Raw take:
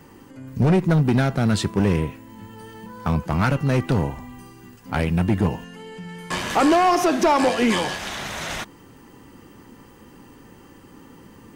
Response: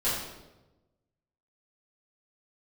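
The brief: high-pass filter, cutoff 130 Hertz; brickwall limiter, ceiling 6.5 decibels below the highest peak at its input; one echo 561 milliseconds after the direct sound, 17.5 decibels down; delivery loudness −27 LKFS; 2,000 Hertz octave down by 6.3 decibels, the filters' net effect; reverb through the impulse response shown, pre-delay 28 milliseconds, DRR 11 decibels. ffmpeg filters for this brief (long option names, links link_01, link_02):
-filter_complex "[0:a]highpass=130,equalizer=frequency=2000:width_type=o:gain=-8.5,alimiter=limit=-15.5dB:level=0:latency=1,aecho=1:1:561:0.133,asplit=2[link_01][link_02];[1:a]atrim=start_sample=2205,adelay=28[link_03];[link_02][link_03]afir=irnorm=-1:irlink=0,volume=-21dB[link_04];[link_01][link_04]amix=inputs=2:normalize=0,volume=-1.5dB"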